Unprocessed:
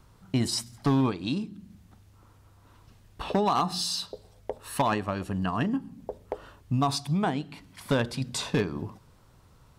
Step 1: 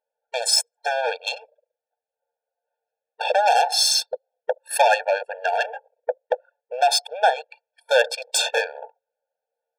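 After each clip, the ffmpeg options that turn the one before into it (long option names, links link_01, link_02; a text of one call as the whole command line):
ffmpeg -i in.wav -af "anlmdn=1.58,aeval=exprs='0.141*sin(PI/2*1.41*val(0)/0.141)':channel_layout=same,afftfilt=real='re*eq(mod(floor(b*sr/1024/460),2),1)':imag='im*eq(mod(floor(b*sr/1024/460),2),1)':win_size=1024:overlap=0.75,volume=9dB" out.wav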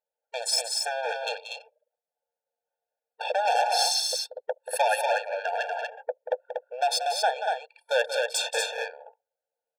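ffmpeg -i in.wav -af "aecho=1:1:183.7|239.1:0.355|0.631,volume=-7dB" out.wav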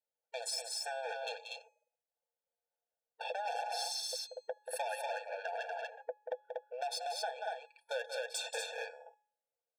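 ffmpeg -i in.wav -af "aecho=1:1:6:0.43,bandreject=frequency=421.1:width_type=h:width=4,bandreject=frequency=842.2:width_type=h:width=4,bandreject=frequency=1263.3:width_type=h:width=4,bandreject=frequency=1684.4:width_type=h:width=4,bandreject=frequency=2105.5:width_type=h:width=4,bandreject=frequency=2526.6:width_type=h:width=4,bandreject=frequency=2947.7:width_type=h:width=4,bandreject=frequency=3368.8:width_type=h:width=4,bandreject=frequency=3789.9:width_type=h:width=4,bandreject=frequency=4211:width_type=h:width=4,bandreject=frequency=4632.1:width_type=h:width=4,bandreject=frequency=5053.2:width_type=h:width=4,bandreject=frequency=5474.3:width_type=h:width=4,bandreject=frequency=5895.4:width_type=h:width=4,bandreject=frequency=6316.5:width_type=h:width=4,bandreject=frequency=6737.6:width_type=h:width=4,bandreject=frequency=7158.7:width_type=h:width=4,bandreject=frequency=7579.8:width_type=h:width=4,bandreject=frequency=8000.9:width_type=h:width=4,acompressor=threshold=-28dB:ratio=3,volume=-8.5dB" out.wav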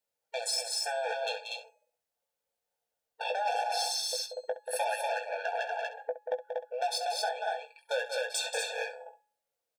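ffmpeg -i in.wav -af "aecho=1:1:18|67:0.447|0.211,volume=5.5dB" out.wav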